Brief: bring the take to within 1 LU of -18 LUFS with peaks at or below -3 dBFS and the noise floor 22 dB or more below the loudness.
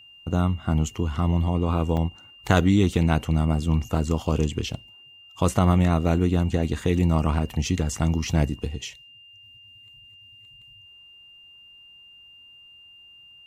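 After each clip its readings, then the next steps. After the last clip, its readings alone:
dropouts 2; longest dropout 3.5 ms; steady tone 2.8 kHz; tone level -47 dBFS; loudness -23.5 LUFS; peak level -3.0 dBFS; loudness target -18.0 LUFS
-> interpolate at 1.97/4.73 s, 3.5 ms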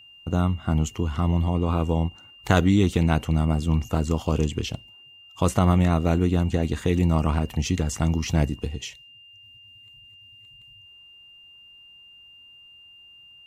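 dropouts 0; steady tone 2.8 kHz; tone level -47 dBFS
-> band-stop 2.8 kHz, Q 30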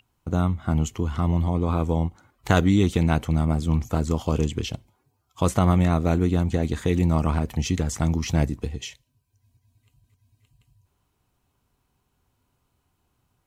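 steady tone not found; loudness -23.5 LUFS; peak level -3.5 dBFS; loudness target -18.0 LUFS
-> trim +5.5 dB; peak limiter -3 dBFS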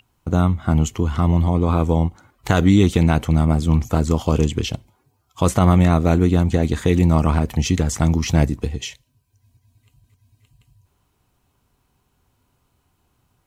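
loudness -18.5 LUFS; peak level -3.0 dBFS; noise floor -67 dBFS

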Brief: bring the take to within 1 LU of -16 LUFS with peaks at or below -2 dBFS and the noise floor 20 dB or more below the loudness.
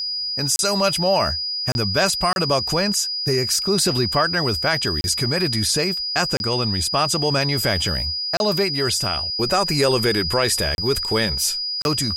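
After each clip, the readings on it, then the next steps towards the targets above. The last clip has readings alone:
dropouts 8; longest dropout 31 ms; steady tone 4.9 kHz; tone level -23 dBFS; loudness -19.5 LUFS; peak level -6.0 dBFS; loudness target -16.0 LUFS
-> interpolate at 0.56/1.72/2.33/5.01/6.37/8.37/10.75/11.82 s, 31 ms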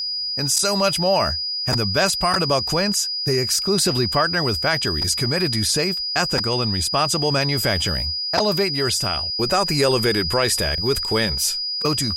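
dropouts 0; steady tone 4.9 kHz; tone level -23 dBFS
-> band-stop 4.9 kHz, Q 30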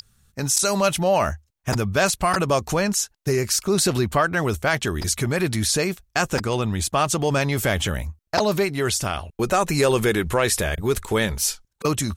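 steady tone not found; loudness -22.0 LUFS; peak level -6.0 dBFS; loudness target -16.0 LUFS
-> trim +6 dB; peak limiter -2 dBFS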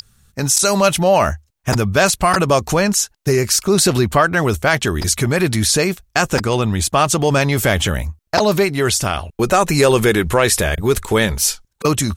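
loudness -16.0 LUFS; peak level -2.0 dBFS; noise floor -64 dBFS

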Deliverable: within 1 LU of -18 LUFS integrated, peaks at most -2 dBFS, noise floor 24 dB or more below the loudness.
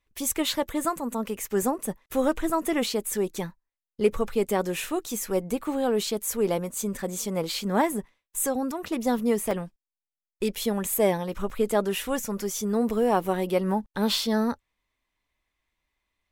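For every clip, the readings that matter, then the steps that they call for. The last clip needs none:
dropouts 5; longest dropout 2.6 ms; loudness -27.0 LUFS; peak level -9.5 dBFS; loudness target -18.0 LUFS
-> interpolate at 3.35/4.13/8.88/9.51/11.50 s, 2.6 ms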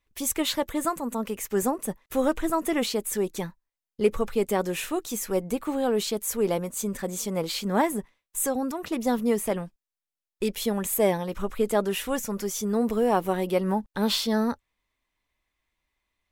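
dropouts 0; loudness -27.0 LUFS; peak level -9.5 dBFS; loudness target -18.0 LUFS
-> trim +9 dB; peak limiter -2 dBFS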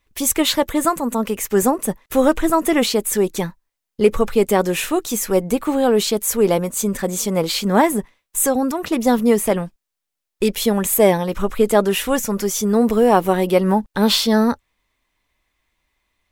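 loudness -18.0 LUFS; peak level -2.0 dBFS; noise floor -81 dBFS

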